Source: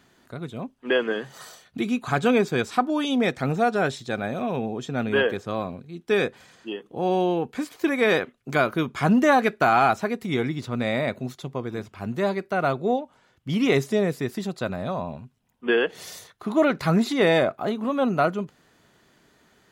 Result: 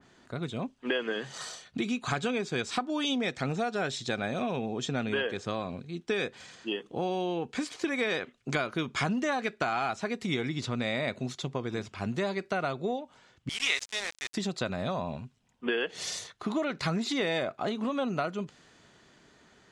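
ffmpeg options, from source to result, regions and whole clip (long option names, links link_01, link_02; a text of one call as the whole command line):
ffmpeg -i in.wav -filter_complex "[0:a]asettb=1/sr,asplit=3[link_01][link_02][link_03];[link_01]atrim=end=13.494[link_04];[link_02]atrim=start=13.49:end=14.34,asetpts=PTS-STARTPTS,afade=type=in:duration=0.004:curve=qsin,afade=type=out:start_time=0.846:duration=0.004:curve=qsin,highpass=1400,asplit=2[link_05][link_06];[link_06]adelay=18,volume=-11dB[link_07];[link_05][link_07]amix=inputs=2:normalize=0,atrim=end_sample=37485,aeval=exprs='val(0)*gte(abs(val(0)),0.0168)':channel_layout=same[link_08];[link_03]atrim=start=14.336[link_09];[link_04][link_08]acrossfade=duration=0.004:curve1=hsin:curve2=qsin[link_10];[link_10][link_09]acrossfade=duration=0.004:curve1=qsin:curve2=hsin,lowpass=frequency=8300:width=0.5412,lowpass=frequency=8300:width=1.3066,acompressor=threshold=-28dB:ratio=6,adynamicequalizer=threshold=0.00447:dfrequency=2000:dqfactor=0.7:tfrequency=2000:tqfactor=0.7:attack=5:release=100:ratio=0.375:range=3.5:mode=boostabove:tftype=highshelf" out.wav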